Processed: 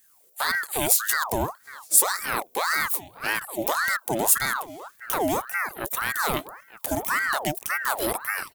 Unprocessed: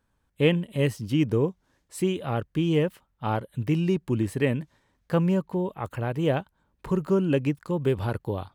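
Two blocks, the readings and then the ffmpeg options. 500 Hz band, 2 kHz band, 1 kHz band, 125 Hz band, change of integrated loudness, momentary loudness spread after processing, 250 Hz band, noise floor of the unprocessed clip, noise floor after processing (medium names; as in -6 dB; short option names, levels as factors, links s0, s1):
-5.0 dB, +12.5 dB, +8.5 dB, -14.5 dB, +2.5 dB, 10 LU, -9.5 dB, -72 dBFS, -59 dBFS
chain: -filter_complex "[0:a]crystalizer=i=6:c=0,lowshelf=f=220:g=7.5,alimiter=limit=0.224:level=0:latency=1:release=45,aemphasis=mode=production:type=75kf,asplit=2[s0][s1];[s1]adelay=916,lowpass=f=1500:p=1,volume=0.178,asplit=2[s2][s3];[s3]adelay=916,lowpass=f=1500:p=1,volume=0.37,asplit=2[s4][s5];[s5]adelay=916,lowpass=f=1500:p=1,volume=0.37[s6];[s2][s4][s6]amix=inputs=3:normalize=0[s7];[s0][s7]amix=inputs=2:normalize=0,aeval=exprs='val(0)*sin(2*PI*1100*n/s+1100*0.6/1.8*sin(2*PI*1.8*n/s))':c=same,volume=0.794"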